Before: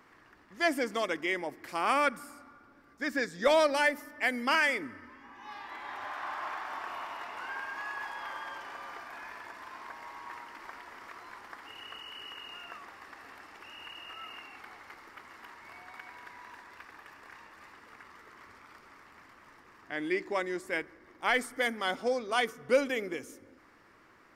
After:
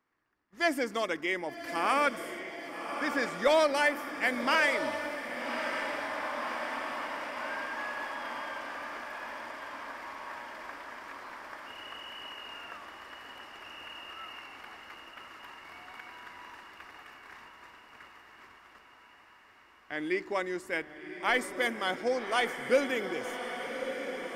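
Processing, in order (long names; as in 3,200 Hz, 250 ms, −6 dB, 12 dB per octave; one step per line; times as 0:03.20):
noise gate −52 dBFS, range −20 dB
feedback delay with all-pass diffusion 1,153 ms, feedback 66%, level −8 dB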